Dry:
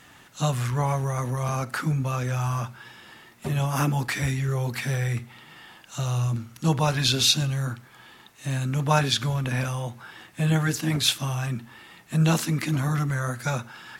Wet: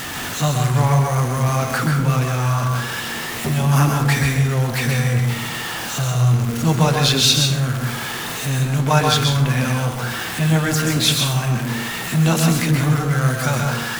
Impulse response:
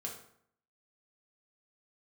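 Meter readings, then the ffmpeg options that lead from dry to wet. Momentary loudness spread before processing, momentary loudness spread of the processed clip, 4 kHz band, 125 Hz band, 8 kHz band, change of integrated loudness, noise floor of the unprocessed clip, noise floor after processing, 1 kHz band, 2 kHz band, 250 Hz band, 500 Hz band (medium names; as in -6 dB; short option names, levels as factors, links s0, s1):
11 LU, 8 LU, +7.0 dB, +8.0 dB, +8.0 dB, +7.0 dB, -52 dBFS, -27 dBFS, +7.5 dB, +9.0 dB, +7.5 dB, +7.5 dB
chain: -filter_complex "[0:a]aeval=exprs='val(0)+0.5*0.0473*sgn(val(0))':c=same,asplit=2[s0][s1];[1:a]atrim=start_sample=2205,adelay=129[s2];[s1][s2]afir=irnorm=-1:irlink=0,volume=0.841[s3];[s0][s3]amix=inputs=2:normalize=0,volume=1.41"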